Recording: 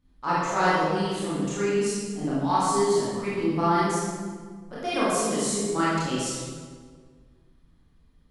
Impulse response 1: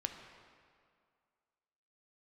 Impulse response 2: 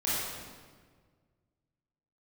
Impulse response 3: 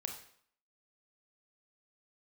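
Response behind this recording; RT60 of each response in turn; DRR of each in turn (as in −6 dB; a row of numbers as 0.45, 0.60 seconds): 2; 2.2, 1.6, 0.60 seconds; 4.5, −9.5, 3.0 decibels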